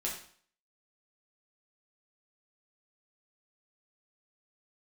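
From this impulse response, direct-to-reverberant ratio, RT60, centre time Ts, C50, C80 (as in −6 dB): −4.0 dB, 0.50 s, 32 ms, 5.5 dB, 9.0 dB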